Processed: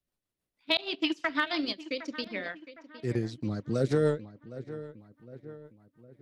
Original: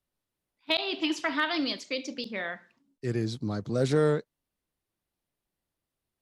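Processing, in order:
transient designer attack +3 dB, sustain −12 dB
feedback echo with a low-pass in the loop 760 ms, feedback 51%, low-pass 2,800 Hz, level −15 dB
rotating-speaker cabinet horn 6.3 Hz

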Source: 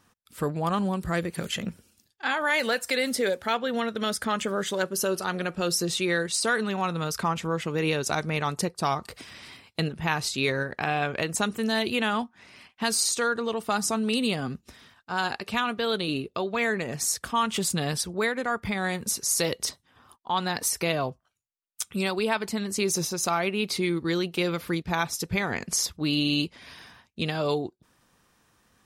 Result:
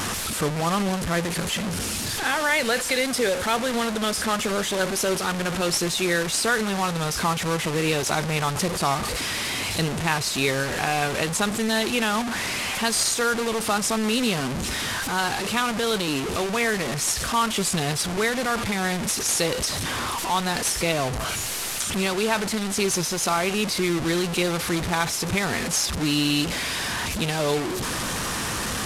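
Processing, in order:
linear delta modulator 64 kbit/s, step −24 dBFS
level +2.5 dB

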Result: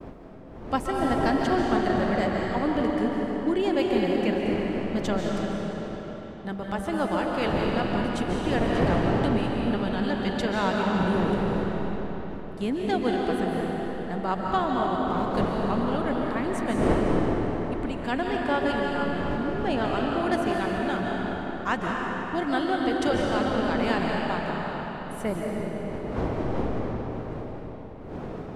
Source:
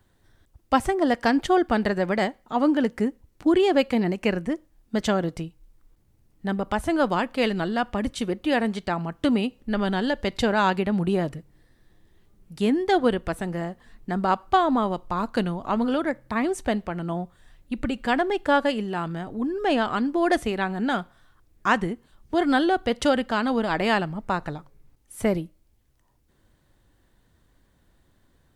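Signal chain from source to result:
wind on the microphone 440 Hz −30 dBFS
downward expander −35 dBFS
comb and all-pass reverb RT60 4.4 s, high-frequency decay 0.8×, pre-delay 105 ms, DRR −2 dB
level −6.5 dB

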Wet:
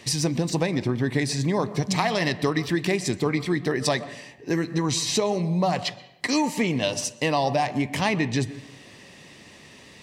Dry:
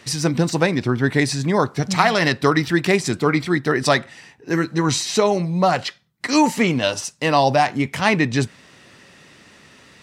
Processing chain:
parametric band 1,400 Hz −13.5 dB 0.3 octaves
downward compressor 3 to 1, threshold −23 dBFS, peak gain reduction 9.5 dB
on a send: convolution reverb RT60 0.85 s, pre-delay 120 ms, DRR 15 dB
on the sum: level +1 dB

